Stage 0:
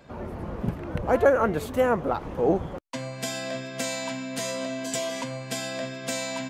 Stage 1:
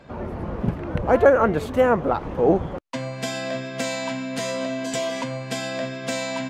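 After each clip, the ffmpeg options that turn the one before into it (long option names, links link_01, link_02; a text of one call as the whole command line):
ffmpeg -i in.wav -af "highshelf=frequency=7200:gain=-12,volume=4.5dB" out.wav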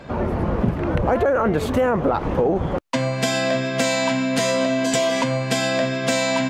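ffmpeg -i in.wav -af "alimiter=limit=-14dB:level=0:latency=1:release=12,acompressor=threshold=-24dB:ratio=6,volume=8.5dB" out.wav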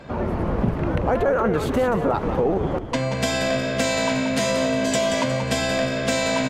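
ffmpeg -i in.wav -filter_complex "[0:a]asplit=5[link_01][link_02][link_03][link_04][link_05];[link_02]adelay=180,afreqshift=-56,volume=-8dB[link_06];[link_03]adelay=360,afreqshift=-112,volume=-16.9dB[link_07];[link_04]adelay=540,afreqshift=-168,volume=-25.7dB[link_08];[link_05]adelay=720,afreqshift=-224,volume=-34.6dB[link_09];[link_01][link_06][link_07][link_08][link_09]amix=inputs=5:normalize=0,volume=-2dB" out.wav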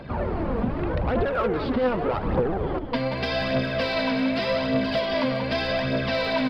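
ffmpeg -i in.wav -af "aresample=11025,asoftclip=type=tanh:threshold=-18dB,aresample=44100,aphaser=in_gain=1:out_gain=1:delay=4.5:decay=0.47:speed=0.84:type=triangular,volume=-1.5dB" out.wav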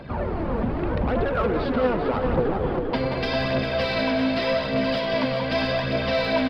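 ffmpeg -i in.wav -filter_complex "[0:a]asplit=2[link_01][link_02];[link_02]adelay=398,lowpass=frequency=4900:poles=1,volume=-6dB,asplit=2[link_03][link_04];[link_04]adelay=398,lowpass=frequency=4900:poles=1,volume=0.51,asplit=2[link_05][link_06];[link_06]adelay=398,lowpass=frequency=4900:poles=1,volume=0.51,asplit=2[link_07][link_08];[link_08]adelay=398,lowpass=frequency=4900:poles=1,volume=0.51,asplit=2[link_09][link_10];[link_10]adelay=398,lowpass=frequency=4900:poles=1,volume=0.51,asplit=2[link_11][link_12];[link_12]adelay=398,lowpass=frequency=4900:poles=1,volume=0.51[link_13];[link_01][link_03][link_05][link_07][link_09][link_11][link_13]amix=inputs=7:normalize=0" out.wav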